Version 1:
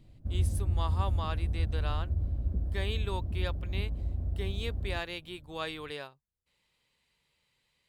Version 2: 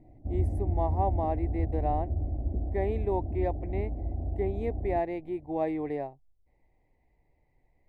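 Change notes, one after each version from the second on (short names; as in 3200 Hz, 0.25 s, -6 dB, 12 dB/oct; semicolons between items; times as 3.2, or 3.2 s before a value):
speech: remove HPF 340 Hz 6 dB/oct; master: add EQ curve 130 Hz 0 dB, 190 Hz -3 dB, 300 Hz +11 dB, 520 Hz +4 dB, 740 Hz +15 dB, 1400 Hz -21 dB, 2000 Hz +1 dB, 3100 Hz -25 dB, 5700 Hz -20 dB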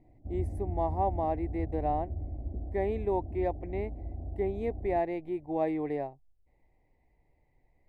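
background -6.0 dB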